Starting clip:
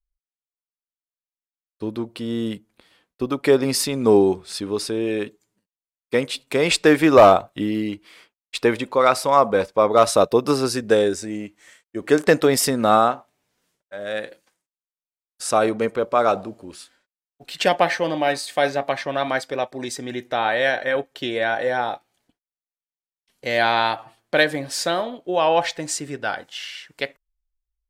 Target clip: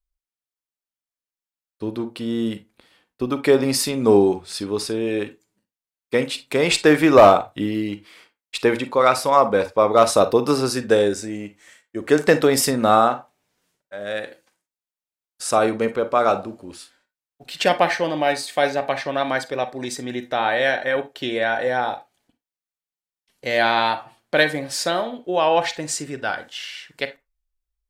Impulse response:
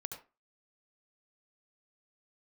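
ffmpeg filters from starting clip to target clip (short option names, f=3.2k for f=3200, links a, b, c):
-filter_complex "[0:a]asplit=2[a][b];[1:a]atrim=start_sample=2205,asetrate=74970,aresample=44100[c];[b][c]afir=irnorm=-1:irlink=0,volume=3dB[d];[a][d]amix=inputs=2:normalize=0,volume=-3.5dB"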